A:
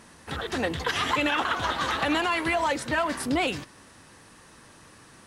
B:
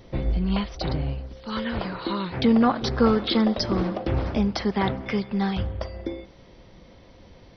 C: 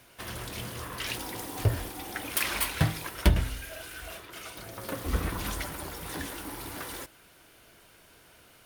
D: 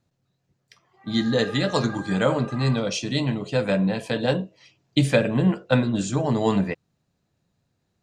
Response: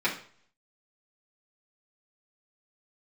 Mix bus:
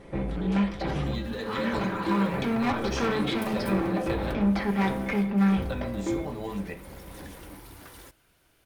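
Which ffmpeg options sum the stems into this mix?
-filter_complex "[0:a]volume=-14.5dB[link_01];[1:a]lowpass=2400,acontrast=86,asoftclip=type=tanh:threshold=-20dB,volume=-8dB,asplit=2[link_02][link_03];[link_03]volume=-8.5dB[link_04];[2:a]adelay=1050,volume=-9.5dB[link_05];[3:a]acrusher=bits=7:mode=log:mix=0:aa=0.000001,acompressor=threshold=-23dB:ratio=6,volume=-3dB,asplit=3[link_06][link_07][link_08];[link_06]atrim=end=4.36,asetpts=PTS-STARTPTS,afade=type=out:start_time=4.356:duration=0.004:curve=hsin[link_09];[link_07]atrim=start=4.36:end=5.52,asetpts=PTS-STARTPTS,volume=0[link_10];[link_08]atrim=start=5.52,asetpts=PTS-STARTPTS,afade=type=in:duration=0.004:curve=hsin[link_11];[link_09][link_10][link_11]concat=n=3:v=0:a=1,asplit=2[link_12][link_13];[link_13]volume=-18.5dB[link_14];[link_01][link_05][link_12]amix=inputs=3:normalize=0,lowshelf=frequency=120:gain=10,acompressor=threshold=-38dB:ratio=2.5,volume=0dB[link_15];[4:a]atrim=start_sample=2205[link_16];[link_04][link_14]amix=inputs=2:normalize=0[link_17];[link_17][link_16]afir=irnorm=-1:irlink=0[link_18];[link_02][link_15][link_18]amix=inputs=3:normalize=0"

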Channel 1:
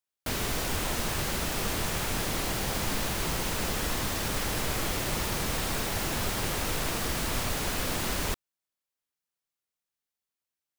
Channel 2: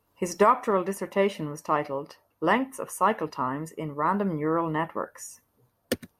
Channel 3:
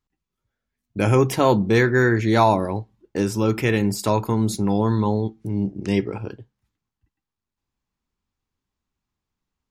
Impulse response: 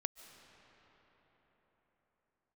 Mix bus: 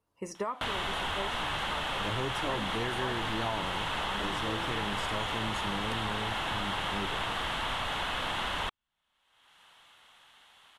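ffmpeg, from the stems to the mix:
-filter_complex "[0:a]bandreject=frequency=2400:width=13,acompressor=mode=upward:threshold=-36dB:ratio=2.5,firequalizer=gain_entry='entry(400,0);entry(850,13);entry(2000,9);entry(3300,14);entry(4800,-6)':delay=0.05:min_phase=1,adelay=350,volume=-2dB[link_01];[1:a]volume=-9dB[link_02];[2:a]adelay=1050,volume=-10dB[link_03];[link_01][link_02][link_03]amix=inputs=3:normalize=0,lowpass=frequency=11000:width=0.5412,lowpass=frequency=11000:width=1.3066,acompressor=threshold=-33dB:ratio=2.5"

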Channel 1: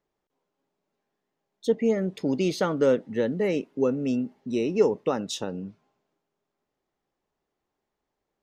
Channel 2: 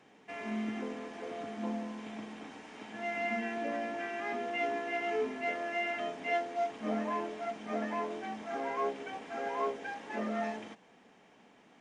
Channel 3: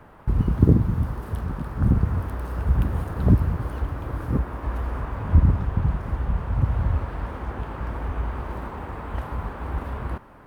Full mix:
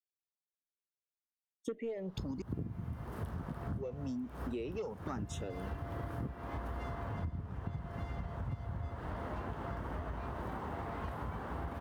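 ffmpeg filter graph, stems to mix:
ffmpeg -i stem1.wav -i stem2.wav -i stem3.wav -filter_complex "[0:a]aeval=exprs='0.355*(cos(1*acos(clip(val(0)/0.355,-1,1)))-cos(1*PI/2))+0.0501*(cos(5*acos(clip(val(0)/0.355,-1,1)))-cos(5*PI/2))':channel_layout=same,asplit=2[link_01][link_02];[link_02]afreqshift=1.1[link_03];[link_01][link_03]amix=inputs=2:normalize=1,volume=-3dB,asplit=3[link_04][link_05][link_06];[link_04]atrim=end=2.42,asetpts=PTS-STARTPTS,afade=type=out:start_time=2.416:duration=0.004:curve=hsin[link_07];[link_05]atrim=start=2.42:end=3.63,asetpts=PTS-STARTPTS,volume=0[link_08];[link_06]atrim=start=3.63,asetpts=PTS-STARTPTS,afade=type=in:duration=0.004:curve=hsin[link_09];[link_07][link_08][link_09]concat=n=3:v=0:a=1,asplit=2[link_10][link_11];[1:a]lowshelf=frequency=430:width_type=q:width=3:gain=-12,asoftclip=type=tanh:threshold=-32.5dB,adelay=2250,volume=-10dB[link_12];[2:a]highpass=94,lowshelf=frequency=150:gain=4,bandreject=frequency=2400:width=6.7,adelay=1900,volume=-4dB[link_13];[link_11]apad=whole_len=545361[link_14];[link_13][link_14]sidechaincompress=threshold=-35dB:ratio=8:attack=16:release=261[link_15];[link_10][link_12][link_15]amix=inputs=3:normalize=0,agate=range=-33dB:threshold=-39dB:ratio=3:detection=peak,acompressor=threshold=-36dB:ratio=12" out.wav

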